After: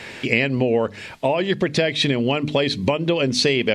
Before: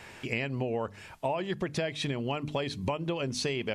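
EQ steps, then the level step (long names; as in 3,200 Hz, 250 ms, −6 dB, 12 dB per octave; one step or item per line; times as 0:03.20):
octave-band graphic EQ 125/250/500/2,000/4,000/8,000 Hz +4/+8/+8/+8/+10/+3 dB
+3.5 dB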